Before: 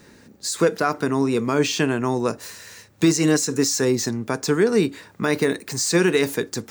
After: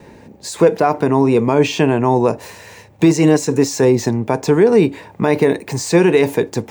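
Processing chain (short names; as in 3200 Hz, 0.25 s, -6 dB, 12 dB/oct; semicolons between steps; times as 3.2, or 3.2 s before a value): gate with hold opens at -46 dBFS; EQ curve 140 Hz 0 dB, 240 Hz -3 dB, 920 Hz +4 dB, 1300 Hz -10 dB, 2400 Hz -3 dB, 4500 Hz -12 dB; in parallel at +2.5 dB: limiter -15.5 dBFS, peak gain reduction 7 dB; on the sum: gain +2.5 dB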